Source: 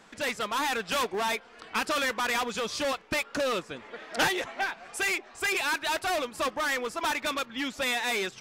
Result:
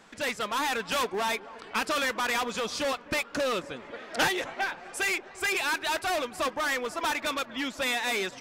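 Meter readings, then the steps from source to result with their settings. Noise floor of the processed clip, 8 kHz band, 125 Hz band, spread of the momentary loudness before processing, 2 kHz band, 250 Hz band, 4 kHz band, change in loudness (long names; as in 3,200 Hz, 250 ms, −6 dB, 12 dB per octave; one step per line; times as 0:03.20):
−48 dBFS, 0.0 dB, 0.0 dB, 6 LU, 0.0 dB, 0.0 dB, 0.0 dB, 0.0 dB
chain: delay with a low-pass on its return 260 ms, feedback 73%, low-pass 1,400 Hz, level −18.5 dB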